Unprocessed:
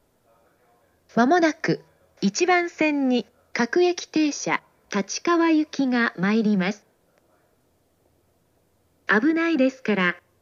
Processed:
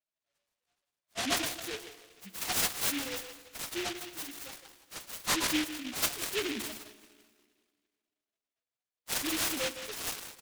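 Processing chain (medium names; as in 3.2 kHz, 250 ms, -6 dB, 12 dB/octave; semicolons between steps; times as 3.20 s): 6.02–6.67 s: formants replaced by sine waves; gate -56 dBFS, range -12 dB; high-pass 980 Hz 12 dB/octave; transient shaper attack -2 dB, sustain +11 dB; peak limiter -17.5 dBFS, peak gain reduction 8 dB; 4.24–5.13 s: compression, threshold -32 dBFS, peak gain reduction 6.5 dB; loudest bins only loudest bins 1; speakerphone echo 160 ms, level -10 dB; on a send at -12.5 dB: reverberation RT60 1.9 s, pre-delay 18 ms; on the sum: delay time shaken by noise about 2.5 kHz, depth 0.3 ms; trim +5 dB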